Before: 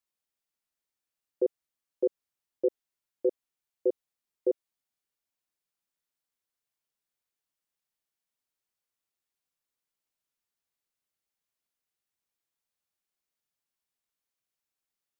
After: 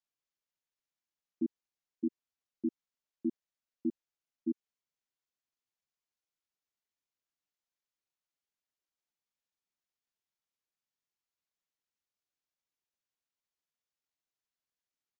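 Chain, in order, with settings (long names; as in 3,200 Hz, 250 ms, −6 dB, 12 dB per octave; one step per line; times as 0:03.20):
pitch shifter −7.5 semitones
downsampling to 16,000 Hz
level −6.5 dB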